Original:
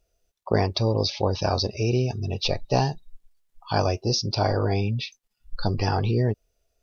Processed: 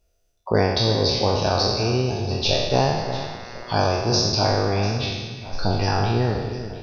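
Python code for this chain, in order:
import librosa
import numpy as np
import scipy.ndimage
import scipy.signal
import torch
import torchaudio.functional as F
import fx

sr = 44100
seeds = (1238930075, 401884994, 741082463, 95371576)

y = fx.spec_trails(x, sr, decay_s=1.31)
y = fx.echo_alternate(y, sr, ms=348, hz=2100.0, feedback_pct=64, wet_db=-10.5)
y = fx.dmg_buzz(y, sr, base_hz=120.0, harmonics=18, level_db=-42.0, tilt_db=0, odd_only=False, at=(2.7, 3.73), fade=0.02)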